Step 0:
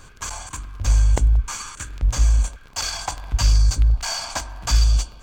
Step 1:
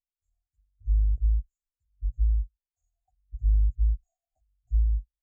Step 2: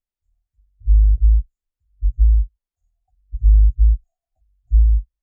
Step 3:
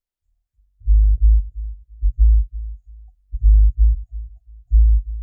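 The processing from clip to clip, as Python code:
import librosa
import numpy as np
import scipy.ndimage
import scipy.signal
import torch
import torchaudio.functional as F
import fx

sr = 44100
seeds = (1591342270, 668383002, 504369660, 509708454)

y1 = scipy.signal.sosfilt(scipy.signal.cheby1(5, 1.0, [760.0, 6600.0], 'bandstop', fs=sr, output='sos'), x)
y1 = fx.spectral_expand(y1, sr, expansion=2.5)
y1 = F.gain(torch.from_numpy(y1), -7.5).numpy()
y2 = fx.tilt_eq(y1, sr, slope=-2.0)
y2 = F.gain(torch.from_numpy(y2), 2.0).numpy()
y3 = fx.echo_feedback(y2, sr, ms=339, feedback_pct=24, wet_db=-16.5)
y3 = fx.rider(y3, sr, range_db=10, speed_s=0.5)
y3 = F.gain(torch.from_numpy(y3), 1.0).numpy()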